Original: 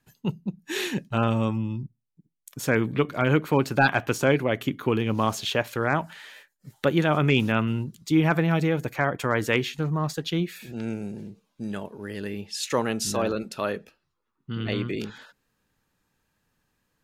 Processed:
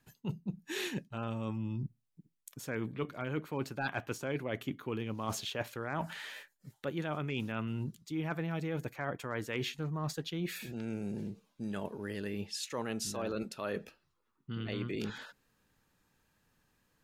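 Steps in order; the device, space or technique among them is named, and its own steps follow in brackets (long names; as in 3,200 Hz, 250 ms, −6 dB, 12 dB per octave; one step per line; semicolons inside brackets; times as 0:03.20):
compression on the reversed sound (reversed playback; downward compressor 6 to 1, threshold −34 dBFS, peak gain reduction 17.5 dB; reversed playback)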